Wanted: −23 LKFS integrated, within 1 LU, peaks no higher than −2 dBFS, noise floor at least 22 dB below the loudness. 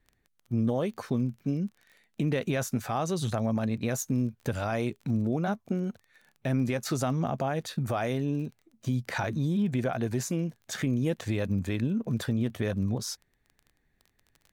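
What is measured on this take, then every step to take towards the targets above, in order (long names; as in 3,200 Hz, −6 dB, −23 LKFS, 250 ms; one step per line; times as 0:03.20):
crackle rate 23 per second; integrated loudness −30.5 LKFS; sample peak −18.0 dBFS; target loudness −23.0 LKFS
→ click removal
level +7.5 dB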